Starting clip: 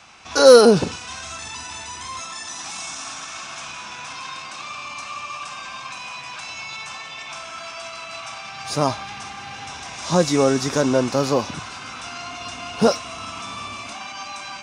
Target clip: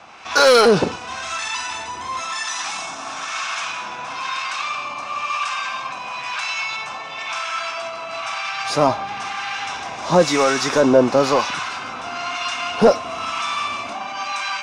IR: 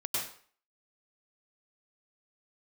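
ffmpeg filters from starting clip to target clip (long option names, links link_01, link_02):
-filter_complex "[0:a]asplit=2[link_01][link_02];[link_02]highpass=frequency=720:poles=1,volume=17dB,asoftclip=type=tanh:threshold=-1dB[link_03];[link_01][link_03]amix=inputs=2:normalize=0,lowpass=frequency=2100:poles=1,volume=-6dB,acrossover=split=880[link_04][link_05];[link_04]aeval=exprs='val(0)*(1-0.7/2+0.7/2*cos(2*PI*1*n/s))':channel_layout=same[link_06];[link_05]aeval=exprs='val(0)*(1-0.7/2-0.7/2*cos(2*PI*1*n/s))':channel_layout=same[link_07];[link_06][link_07]amix=inputs=2:normalize=0,volume=2.5dB"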